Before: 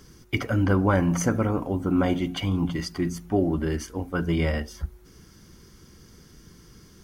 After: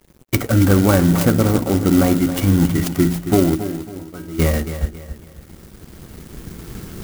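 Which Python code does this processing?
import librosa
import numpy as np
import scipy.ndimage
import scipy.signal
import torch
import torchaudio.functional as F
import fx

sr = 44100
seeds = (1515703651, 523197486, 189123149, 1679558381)

p1 = fx.recorder_agc(x, sr, target_db=-14.0, rise_db_per_s=5.2, max_gain_db=30)
p2 = fx.notch(p1, sr, hz=1000.0, q=8.4)
p3 = np.sign(p2) * np.maximum(np.abs(p2) - 10.0 ** (-48.0 / 20.0), 0.0)
p4 = fx.sample_hold(p3, sr, seeds[0], rate_hz=1700.0, jitter_pct=0)
p5 = p3 + (p4 * 10.0 ** (-7.5 / 20.0))
p6 = fx.comb_fb(p5, sr, f0_hz=320.0, decay_s=0.65, harmonics='all', damping=0.0, mix_pct=90, at=(3.54, 4.38), fade=0.02)
p7 = p6 + fx.echo_feedback(p6, sr, ms=274, feedback_pct=36, wet_db=-11, dry=0)
p8 = fx.clock_jitter(p7, sr, seeds[1], jitter_ms=0.066)
y = p8 * 10.0 ** (5.5 / 20.0)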